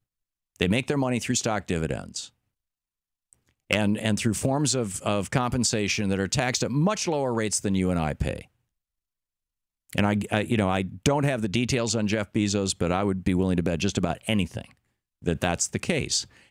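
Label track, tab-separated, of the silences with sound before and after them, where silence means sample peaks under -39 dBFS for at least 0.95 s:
2.270000	3.330000	silence
8.420000	9.900000	silence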